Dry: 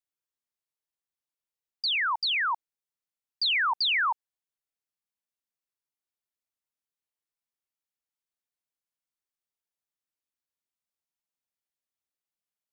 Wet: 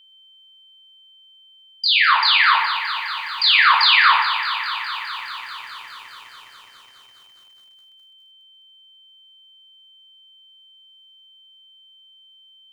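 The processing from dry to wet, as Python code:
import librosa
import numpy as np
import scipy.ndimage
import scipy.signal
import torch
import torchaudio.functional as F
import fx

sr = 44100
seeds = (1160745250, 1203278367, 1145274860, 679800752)

p1 = fx.room_shoebox(x, sr, seeds[0], volume_m3=670.0, walls='furnished', distance_m=6.0)
p2 = fx.vibrato(p1, sr, rate_hz=0.8, depth_cents=8.4)
p3 = p2 + 10.0 ** (-53.0 / 20.0) * np.sin(2.0 * np.pi * 3100.0 * np.arange(len(p2)) / sr)
p4 = p3 + fx.echo_single(p3, sr, ms=121, db=-14.0, dry=0)
p5 = fx.echo_crushed(p4, sr, ms=207, feedback_pct=80, bits=9, wet_db=-10.5)
y = p5 * 10.0 ** (3.5 / 20.0)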